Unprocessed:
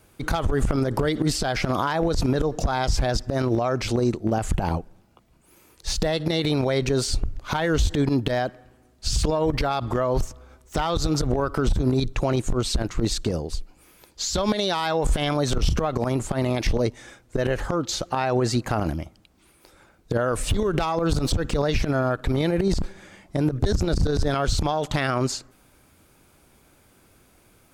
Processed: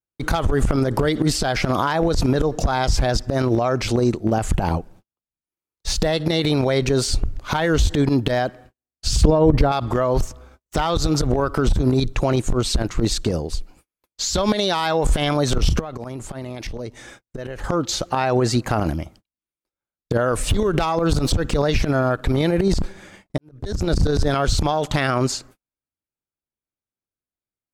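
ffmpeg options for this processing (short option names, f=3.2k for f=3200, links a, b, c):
-filter_complex "[0:a]asettb=1/sr,asplit=3[a][b][c];[a]atrim=end=9.214[d];[b]atrim=start=9.21:end=9.72,asetpts=PTS-STARTPTS,afade=t=in:d=0.004:c=qsin,afade=t=out:st=0.506:d=0.004:c=qsin,tiltshelf=f=970:g=6.5[e];[c]atrim=start=9.716[f];[d][e]acrossfade=d=0.004:c1=hsin:c2=qsin[g];[g][f]acrossfade=d=0.004:c1=qsin:c2=hsin,asettb=1/sr,asplit=3[h][i][j];[h]atrim=end=15.804[k];[i]atrim=start=15.8:end=17.64,asetpts=PTS-STARTPTS,afade=t=in:d=0.004:c=qsin,afade=t=out:st=1.836:d=0.004:c=qsin,acompressor=threshold=-36dB:ratio=2.5:attack=3.2:release=140:knee=1:detection=peak[l];[j]atrim=start=17.636[m];[k][l]acrossfade=d=0.004:c1=hsin:c2=qsin[n];[n][m]acrossfade=d=0.004:c1=qsin:c2=hsin,asplit=2[o][p];[o]atrim=end=23.38,asetpts=PTS-STARTPTS,afade=t=out:st=23.376:d=0.004:c=hsin[q];[p]atrim=start=23.38,asetpts=PTS-STARTPTS,afade=t=in:d=0.52:c=qua[r];[q][r]concat=n=2:v=0:a=1,agate=range=-44dB:threshold=-47dB:ratio=16:detection=peak,volume=3.5dB"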